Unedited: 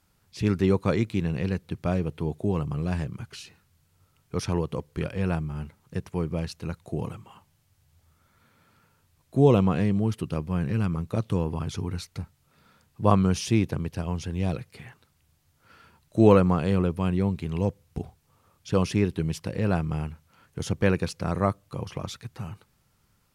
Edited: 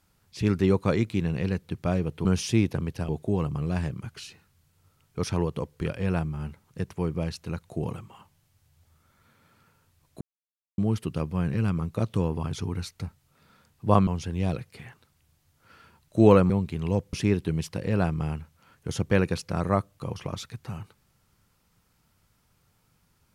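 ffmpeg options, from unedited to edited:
-filter_complex "[0:a]asplit=8[a][b][c][d][e][f][g][h];[a]atrim=end=2.252[i];[b]atrim=start=13.228:end=14.072[j];[c]atrim=start=2.248:end=9.37,asetpts=PTS-STARTPTS,afade=t=out:st=7.118:d=0.004:c=hsin[k];[d]atrim=start=9.37:end=9.94,asetpts=PTS-STARTPTS,volume=0[l];[e]atrim=start=9.94:end=13.232,asetpts=PTS-STARTPTS,afade=t=in:d=0.004:c=hsin[m];[f]atrim=start=14.068:end=16.502[n];[g]atrim=start=17.198:end=17.832[o];[h]atrim=start=18.838[p];[i][j]acrossfade=d=0.004:c1=hsin:c2=hsin[q];[k][l][m]concat=n=3:v=0:a=1[r];[q][r]acrossfade=d=0.004:c1=hsin:c2=hsin[s];[s][n]acrossfade=d=0.004:c1=hsin:c2=hsin[t];[t][o]acrossfade=d=0.004:c1=hsin:c2=hsin[u];[u][p]acrossfade=d=0.004:c1=hsin:c2=hsin"

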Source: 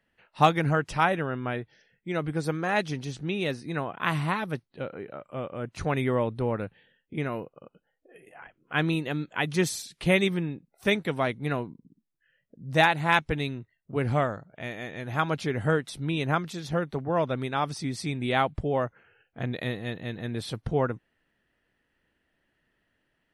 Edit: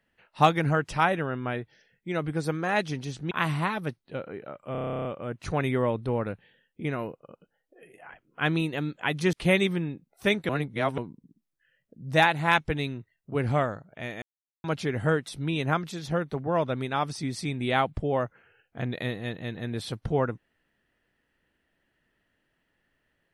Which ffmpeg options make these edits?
-filter_complex "[0:a]asplit=18[a][b][c][d][e][f][g][h][i][j][k][l][m][n][o][p][q][r];[a]atrim=end=3.312[s];[b]atrim=start=3.968:end=5.412[t];[c]atrim=start=5.378:end=5.412[u];[d]atrim=start=5.378:end=5.412[v];[e]atrim=start=5.378:end=5.412[w];[f]atrim=start=5.378:end=5.412[x];[g]atrim=start=5.378:end=5.412[y];[h]atrim=start=5.378:end=5.412[z];[i]atrim=start=5.378:end=5.412[aa];[j]atrim=start=5.378:end=5.412[ab];[k]atrim=start=5.378:end=5.412[ac];[l]atrim=start=5.378:end=5.412[ad];[m]atrim=start=5.378:end=9.662[ae];[n]atrim=start=9.938:end=11.102[af];[o]atrim=start=11.098:end=11.592,asetpts=PTS-STARTPTS,areverse[ag];[p]atrim=start=11.588:end=14.83,asetpts=PTS-STARTPTS,afade=t=out:st=3.238:d=0.004:c=hsin[ah];[q]atrim=start=14.83:end=15.25,asetpts=PTS-STARTPTS,volume=0[ai];[r]atrim=start=15.25,asetpts=PTS-STARTPTS,afade=t=in:d=0.004:c=hsin[aj];[s][t]acrossfade=d=0.004:c1=hsin:c2=hsin[ak];[ak][u]acrossfade=d=0.004:c1=hsin:c2=hsin[al];[al][v]acrossfade=d=0.004:c1=hsin:c2=hsin[am];[am][w]acrossfade=d=0.004:c1=hsin:c2=hsin[an];[an][x]acrossfade=d=0.004:c1=hsin:c2=hsin[ao];[ao][y]acrossfade=d=0.004:c1=hsin:c2=hsin[ap];[ap][z]acrossfade=d=0.004:c1=hsin:c2=hsin[aq];[aq][aa]acrossfade=d=0.004:c1=hsin:c2=hsin[ar];[ar][ab]acrossfade=d=0.004:c1=hsin:c2=hsin[as];[as][ac]acrossfade=d=0.004:c1=hsin:c2=hsin[at];[at][ad]acrossfade=d=0.004:c1=hsin:c2=hsin[au];[au][ae]acrossfade=d=0.004:c1=hsin:c2=hsin[av];[av][af]acrossfade=d=0.004:c1=hsin:c2=hsin[aw];[aw][ag]acrossfade=d=0.004:c1=hsin:c2=hsin[ax];[ah][ai][aj]concat=n=3:v=0:a=1[ay];[ax][ay]acrossfade=d=0.004:c1=hsin:c2=hsin"

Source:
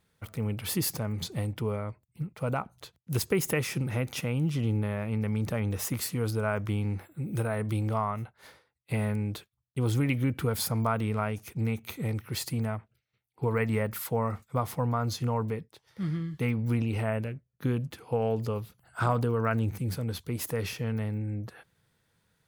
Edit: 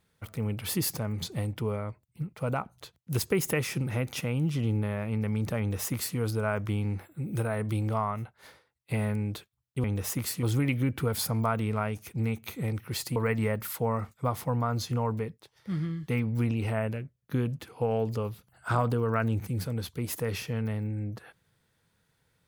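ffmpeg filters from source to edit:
-filter_complex "[0:a]asplit=4[a][b][c][d];[a]atrim=end=9.842[e];[b]atrim=start=5.588:end=6.182[f];[c]atrim=start=9.838:end=12.572[g];[d]atrim=start=13.468[h];[e][f]acrossfade=d=0.004:c1=hsin:c2=hsin[i];[i][g]acrossfade=d=0.004:c1=hsin:c2=hsin[j];[j][h]acrossfade=d=0.004:c1=hsin:c2=hsin"

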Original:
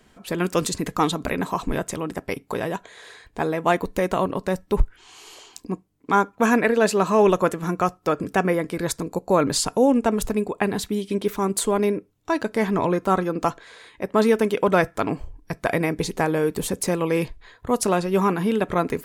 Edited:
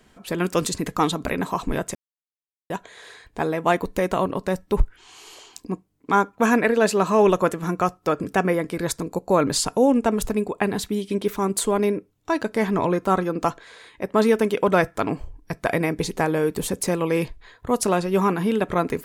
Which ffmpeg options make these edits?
-filter_complex "[0:a]asplit=3[a][b][c];[a]atrim=end=1.95,asetpts=PTS-STARTPTS,afade=t=out:st=1.946:d=0.004:c=hsin[d];[b]atrim=start=1.95:end=2.7,asetpts=PTS-STARTPTS,volume=0[e];[c]atrim=start=2.7,asetpts=PTS-STARTPTS,afade=t=in:d=0.004:c=hsin[f];[d][e][f]concat=n=3:v=0:a=1"

